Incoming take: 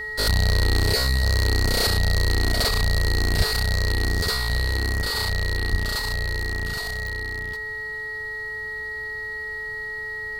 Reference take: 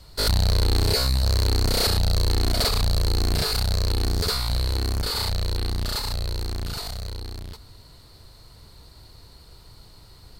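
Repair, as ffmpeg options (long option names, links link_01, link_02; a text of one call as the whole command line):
ffmpeg -i in.wav -filter_complex "[0:a]adeclick=threshold=4,bandreject=frequency=432.5:width_type=h:width=4,bandreject=frequency=865:width_type=h:width=4,bandreject=frequency=1297.5:width_type=h:width=4,bandreject=frequency=1730:width_type=h:width=4,bandreject=frequency=2162.5:width_type=h:width=4,bandreject=frequency=1900:width=30,asplit=3[link_01][link_02][link_03];[link_01]afade=type=out:start_time=3.37:duration=0.02[link_04];[link_02]highpass=frequency=140:width=0.5412,highpass=frequency=140:width=1.3066,afade=type=in:start_time=3.37:duration=0.02,afade=type=out:start_time=3.49:duration=0.02[link_05];[link_03]afade=type=in:start_time=3.49:duration=0.02[link_06];[link_04][link_05][link_06]amix=inputs=3:normalize=0,asplit=3[link_07][link_08][link_09];[link_07]afade=type=out:start_time=5.7:duration=0.02[link_10];[link_08]highpass=frequency=140:width=0.5412,highpass=frequency=140:width=1.3066,afade=type=in:start_time=5.7:duration=0.02,afade=type=out:start_time=5.82:duration=0.02[link_11];[link_09]afade=type=in:start_time=5.82:duration=0.02[link_12];[link_10][link_11][link_12]amix=inputs=3:normalize=0" out.wav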